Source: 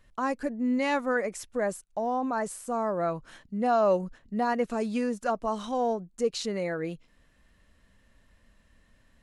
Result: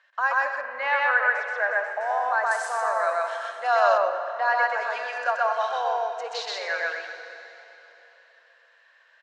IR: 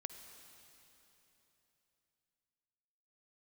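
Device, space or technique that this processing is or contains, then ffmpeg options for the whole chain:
station announcement: -filter_complex "[0:a]highpass=500,lowpass=4.8k,lowpass=6.2k,equalizer=f=1.6k:t=o:w=0.21:g=12,aecho=1:1:128.3|221.6:1|0.282[a];[1:a]atrim=start_sample=2205[b];[a][b]afir=irnorm=-1:irlink=0,asettb=1/sr,asplit=3[c][d][e];[c]atrim=end=2.514[f];[d]atrim=start=2.51:end=3.98,asetpts=PTS-STARTPTS,afade=t=in:d=0.004:c=qsin,afade=t=out:st=1.466:d=0.004:c=qsin,aemphasis=mode=production:type=75fm[g];[e]atrim=start=3.976[h];[f][g]acrossfade=d=0.004:c1=hsin:c2=qsin[i];[i][h]acrossfade=d=0.004:c1=qsin:c2=hsin,highpass=f=640:w=0.5412,highpass=f=640:w=1.3066,asettb=1/sr,asplit=3[j][k][l];[j]atrim=end=0.614[m];[k]atrim=start=0.61:end=2.01,asetpts=PTS-STARTPTS,afade=t=in:d=0.004:c=qsin,afade=t=out:st=1.396:d=0.004:c=qsin,bass=f=250:g=-1,treble=f=4k:g=-14[n];[l]atrim=start=2.006[o];[m][n]acrossfade=d=0.004:c1=hsin:c2=qsin[p];[p][o]acrossfade=d=0.004:c1=qsin:c2=hsin,volume=8dB"

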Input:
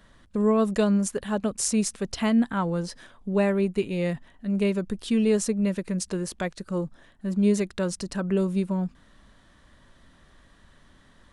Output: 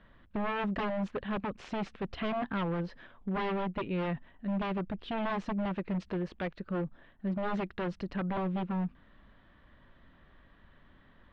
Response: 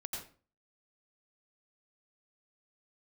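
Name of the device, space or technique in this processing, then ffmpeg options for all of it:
synthesiser wavefolder: -af "aeval=exprs='0.0668*(abs(mod(val(0)/0.0668+3,4)-2)-1)':c=same,lowpass=f=3.1k:w=0.5412,lowpass=f=3.1k:w=1.3066,volume=-3.5dB"

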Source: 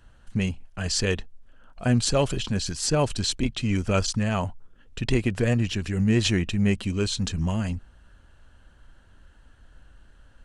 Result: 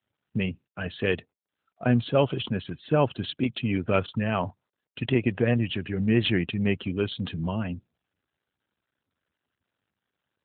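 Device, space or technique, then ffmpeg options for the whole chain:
mobile call with aggressive noise cancelling: -af "highpass=120,equalizer=f=200:w=5.1:g=-4.5,afftdn=nr=36:nf=-42,volume=1.5dB" -ar 8000 -c:a libopencore_amrnb -b:a 12200

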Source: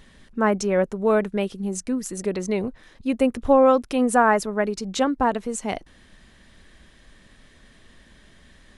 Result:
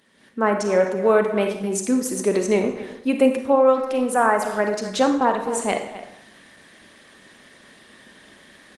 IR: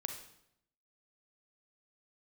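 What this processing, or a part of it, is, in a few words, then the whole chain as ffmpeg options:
speakerphone in a meeting room: -filter_complex "[0:a]highpass=240[a];[1:a]atrim=start_sample=2205[b];[a][b]afir=irnorm=-1:irlink=0,asplit=2[c][d];[d]adelay=260,highpass=300,lowpass=3.4k,asoftclip=type=hard:threshold=-13.5dB,volume=-14dB[e];[c][e]amix=inputs=2:normalize=0,dynaudnorm=f=140:g=3:m=13dB,volume=-4dB" -ar 48000 -c:a libopus -b:a 24k

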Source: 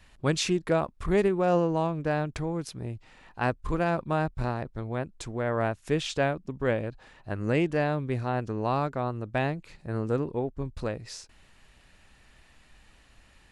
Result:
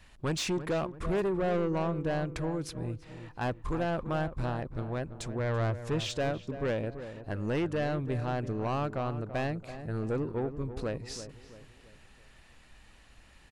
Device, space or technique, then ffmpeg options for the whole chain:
saturation between pre-emphasis and de-emphasis: -filter_complex "[0:a]asettb=1/sr,asplit=3[a][b][c];[a]atrim=end=5.394[d];[b]atrim=start=5.39:end=6.1,asetpts=PTS-STARTPTS,afade=t=in:d=0.004:c=qsin,afade=t=out:st=0.706:d=0.004:c=qsin,equalizer=f=100:t=o:w=0.67:g=10,equalizer=f=250:t=o:w=0.67:g=-3,equalizer=f=10k:t=o:w=0.67:g=-5[e];[c]atrim=start=6.096[f];[d][e]acrossfade=d=0.004:c1=hsin:c2=qsin[g];[g][f]acrossfade=d=0.004:c1=qsin:c2=hsin,highshelf=f=6.1k:g=10,asoftclip=type=tanh:threshold=-25.5dB,highshelf=f=6.1k:g=-10,asplit=2[h][i];[i]adelay=334,lowpass=f=1.6k:p=1,volume=-11dB,asplit=2[j][k];[k]adelay=334,lowpass=f=1.6k:p=1,volume=0.44,asplit=2[l][m];[m]adelay=334,lowpass=f=1.6k:p=1,volume=0.44,asplit=2[n][o];[o]adelay=334,lowpass=f=1.6k:p=1,volume=0.44,asplit=2[p][q];[q]adelay=334,lowpass=f=1.6k:p=1,volume=0.44[r];[h][j][l][n][p][r]amix=inputs=6:normalize=0"

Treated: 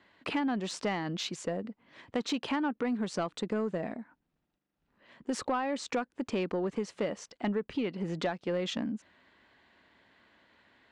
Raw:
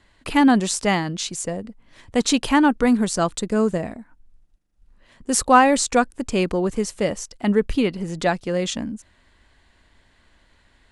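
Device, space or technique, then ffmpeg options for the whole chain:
AM radio: -af "highpass=180,lowpass=3.5k,acompressor=threshold=-25dB:ratio=8,asoftclip=type=tanh:threshold=-19.5dB,volume=-2dB"

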